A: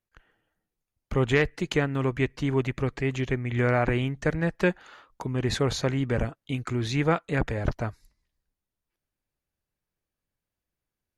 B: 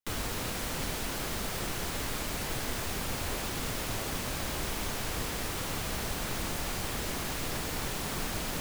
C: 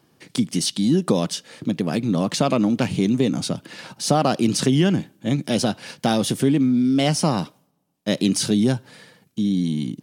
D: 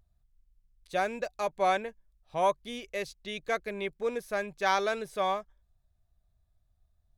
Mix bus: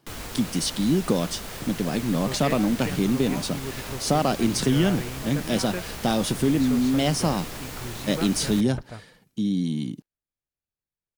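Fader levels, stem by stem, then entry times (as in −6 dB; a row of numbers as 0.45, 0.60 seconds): −10.0, −2.0, −3.5, −14.0 decibels; 1.10, 0.00, 0.00, 0.90 seconds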